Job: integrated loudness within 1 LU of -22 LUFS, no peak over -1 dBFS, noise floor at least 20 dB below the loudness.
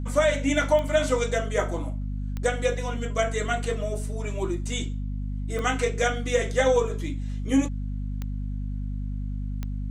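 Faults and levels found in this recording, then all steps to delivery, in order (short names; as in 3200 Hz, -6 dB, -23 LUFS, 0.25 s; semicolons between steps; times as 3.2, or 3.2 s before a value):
clicks 5; hum 50 Hz; harmonics up to 250 Hz; hum level -27 dBFS; loudness -27.0 LUFS; peak -8.5 dBFS; loudness target -22.0 LUFS
-> de-click; notches 50/100/150/200/250 Hz; gain +5 dB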